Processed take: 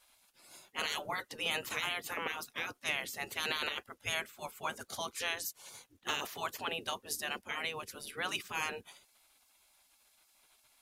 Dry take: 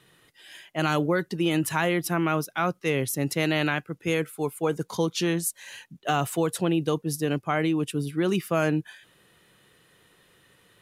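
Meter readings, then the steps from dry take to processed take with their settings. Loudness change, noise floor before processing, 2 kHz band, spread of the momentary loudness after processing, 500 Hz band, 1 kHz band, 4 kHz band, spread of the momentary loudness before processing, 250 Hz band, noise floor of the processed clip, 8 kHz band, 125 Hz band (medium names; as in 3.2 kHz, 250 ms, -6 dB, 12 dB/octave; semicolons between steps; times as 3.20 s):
-10.5 dB, -62 dBFS, -6.0 dB, 9 LU, -17.0 dB, -10.0 dB, -2.5 dB, 5 LU, -25.5 dB, -70 dBFS, -8.0 dB, -26.0 dB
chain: spectral gate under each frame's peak -15 dB weak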